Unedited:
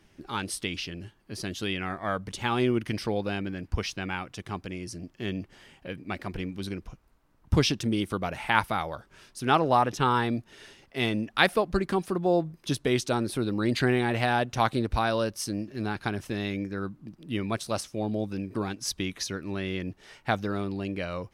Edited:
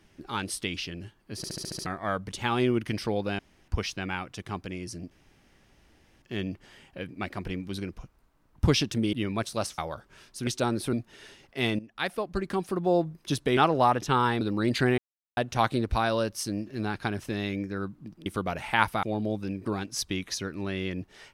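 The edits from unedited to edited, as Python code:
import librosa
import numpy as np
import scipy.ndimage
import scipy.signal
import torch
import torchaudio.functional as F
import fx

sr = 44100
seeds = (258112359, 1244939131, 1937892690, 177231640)

y = fx.edit(x, sr, fx.stutter_over(start_s=1.37, slice_s=0.07, count=7),
    fx.room_tone_fill(start_s=3.39, length_s=0.29),
    fx.insert_room_tone(at_s=5.11, length_s=1.11),
    fx.swap(start_s=8.02, length_s=0.77, other_s=17.27, other_length_s=0.65),
    fx.swap(start_s=9.48, length_s=0.84, other_s=12.96, other_length_s=0.46),
    fx.fade_in_from(start_s=11.18, length_s=1.08, floor_db=-16.0),
    fx.silence(start_s=13.99, length_s=0.39), tone=tone)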